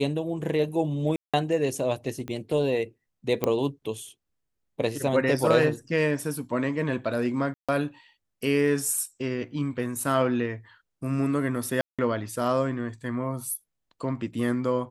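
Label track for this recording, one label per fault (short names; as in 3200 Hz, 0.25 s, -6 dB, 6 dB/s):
1.160000	1.340000	gap 0.176 s
2.280000	2.280000	pop -22 dBFS
3.440000	3.440000	pop -11 dBFS
7.540000	7.690000	gap 0.146 s
11.810000	11.990000	gap 0.176 s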